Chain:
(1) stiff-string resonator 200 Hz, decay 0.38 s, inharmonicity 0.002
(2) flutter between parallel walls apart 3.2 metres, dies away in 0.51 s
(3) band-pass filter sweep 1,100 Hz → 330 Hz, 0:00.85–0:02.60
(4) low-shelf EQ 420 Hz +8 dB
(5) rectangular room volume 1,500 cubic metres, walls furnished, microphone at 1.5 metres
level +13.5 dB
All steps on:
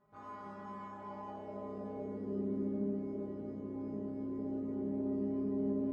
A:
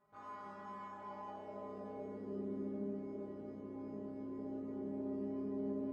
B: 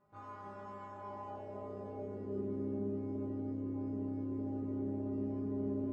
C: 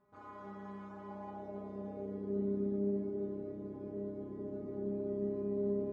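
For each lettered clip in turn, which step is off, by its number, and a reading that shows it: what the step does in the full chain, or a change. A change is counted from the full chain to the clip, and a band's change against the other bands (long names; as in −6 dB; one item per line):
4, 1 kHz band +4.5 dB
5, 125 Hz band +4.5 dB
2, change in momentary loudness spread +2 LU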